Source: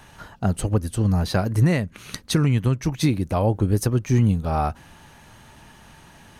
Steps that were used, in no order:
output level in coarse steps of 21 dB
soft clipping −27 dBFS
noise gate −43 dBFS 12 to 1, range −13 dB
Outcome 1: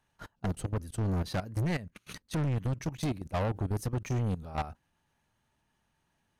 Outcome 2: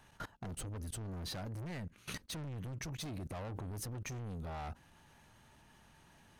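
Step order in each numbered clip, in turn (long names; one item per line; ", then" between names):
output level in coarse steps, then soft clipping, then noise gate
soft clipping, then noise gate, then output level in coarse steps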